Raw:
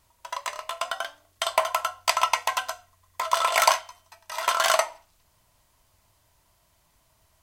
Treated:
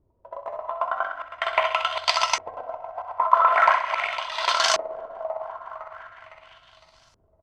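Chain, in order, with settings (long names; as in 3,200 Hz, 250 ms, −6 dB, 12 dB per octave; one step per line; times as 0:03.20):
feedback delay that plays each chunk backwards 254 ms, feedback 65%, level −10.5 dB
repeating echo 64 ms, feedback 46%, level −11 dB
in parallel at −2 dB: brickwall limiter −12.5 dBFS, peak gain reduction 8.5 dB
on the sum: auto-filter low-pass saw up 0.42 Hz 370–5,900 Hz
level −4.5 dB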